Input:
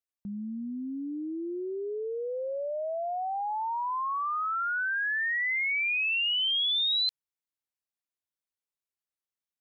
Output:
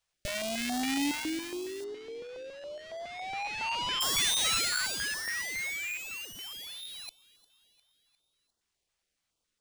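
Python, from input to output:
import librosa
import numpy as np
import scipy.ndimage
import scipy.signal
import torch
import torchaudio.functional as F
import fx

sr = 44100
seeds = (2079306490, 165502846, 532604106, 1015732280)

y = fx.halfwave_hold(x, sr)
y = fx.low_shelf(y, sr, hz=65.0, db=10.5)
y = 10.0 ** (-30.0 / 20.0) * np.tanh(y / 10.0 ** (-30.0 / 20.0))
y = fx.fixed_phaser(y, sr, hz=490.0, stages=4)
y = np.repeat(y[::3], 3)[:len(y)]
y = fx.over_compress(y, sr, threshold_db=-39.0, ratio=-0.5)
y = fx.echo_feedback(y, sr, ms=353, feedback_pct=57, wet_db=-21)
y = fx.dynamic_eq(y, sr, hz=2200.0, q=1.5, threshold_db=-53.0, ratio=4.0, max_db=6)
y = fx.lowpass(y, sr, hz=3500.0, slope=12, at=(1.84, 4.01))
y = fx.filter_held_notch(y, sr, hz=7.2, low_hz=310.0, high_hz=2400.0)
y = y * librosa.db_to_amplitude(6.0)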